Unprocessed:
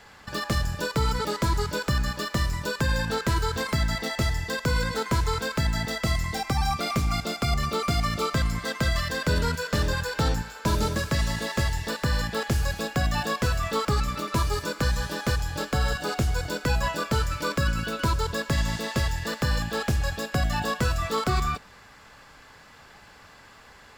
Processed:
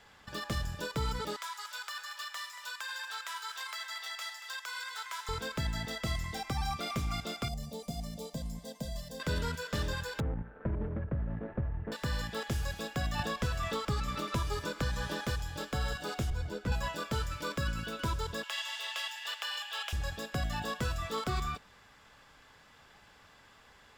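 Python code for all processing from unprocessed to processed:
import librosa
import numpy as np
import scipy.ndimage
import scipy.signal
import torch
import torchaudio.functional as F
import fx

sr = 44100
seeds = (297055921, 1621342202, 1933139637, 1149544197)

y = fx.chain(x, sr, fx.highpass(hz=960.0, slope=24),
    fx.echo_single(ms=231, db=-11.5), at=(1.36, 5.29))
y = fx.chain(y, sr, fx.peak_eq(hz=2400.0, db=-14.0, octaves=1.7),
    fx.fixed_phaser(hz=350.0, stages=6), at=(7.48, 9.2))
y = fx.chain(y, sr, fx.median_filter(points=41),
    fx.lowpass(hz=1900.0, slope=24),
    fx.band_squash(depth_pct=100), at=(10.2, 11.92))
y = fx.chain(y, sr, fx.high_shelf(hz=10000.0, db=-4.0),
    fx.band_squash(depth_pct=100), at=(13.19, 15.25))
y = fx.chain(y, sr, fx.tilt_eq(slope=-2.0),
    fx.ensemble(), at=(16.3, 16.72))
y = fx.chain(y, sr, fx.cheby2_highpass(hz=220.0, order=4, stop_db=60),
    fx.peak_eq(hz=2900.0, db=11.0, octaves=0.51), at=(18.43, 19.93))
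y = fx.peak_eq(y, sr, hz=3400.0, db=4.5, octaves=0.42)
y = fx.notch(y, sr, hz=4300.0, q=15.0)
y = F.gain(torch.from_numpy(y), -9.0).numpy()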